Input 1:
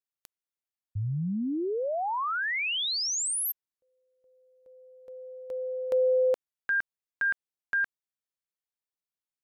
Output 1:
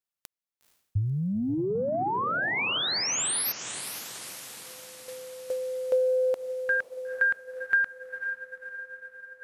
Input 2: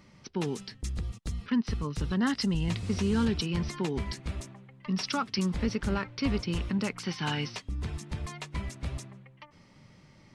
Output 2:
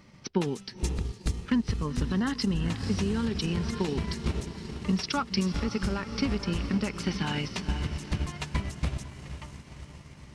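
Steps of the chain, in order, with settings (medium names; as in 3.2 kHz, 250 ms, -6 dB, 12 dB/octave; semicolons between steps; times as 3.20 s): echo that smears into a reverb 486 ms, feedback 60%, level -10 dB; peak limiter -22.5 dBFS; transient shaper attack +6 dB, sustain -4 dB; trim +1.5 dB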